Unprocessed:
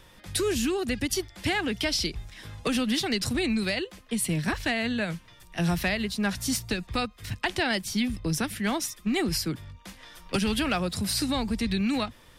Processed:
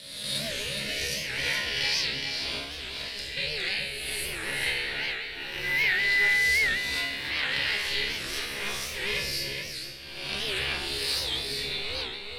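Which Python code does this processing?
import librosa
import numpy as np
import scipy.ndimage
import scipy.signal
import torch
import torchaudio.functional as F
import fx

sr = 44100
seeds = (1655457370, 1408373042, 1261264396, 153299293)

y = fx.spec_swells(x, sr, rise_s=1.25)
y = fx.high_shelf(y, sr, hz=8100.0, db=7.0)
y = fx.over_compress(y, sr, threshold_db=-27.0, ratio=-0.5, at=(2.06, 3.37))
y = fx.dmg_tone(y, sr, hz=1800.0, level_db=-27.0, at=(5.62, 6.64), fade=0.02)
y = y * np.sin(2.0 * np.pi * 200.0 * np.arange(len(y)) / sr)
y = fx.band_shelf(y, sr, hz=2900.0, db=12.5, octaves=1.7)
y = fx.comb_fb(y, sr, f0_hz=69.0, decay_s=0.89, harmonics='all', damping=0.0, mix_pct=90)
y = y + 10.0 ** (-5.5 / 20.0) * np.pad(y, (int(418 * sr / 1000.0), 0))[:len(y)]
y = fx.record_warp(y, sr, rpm=78.0, depth_cents=160.0)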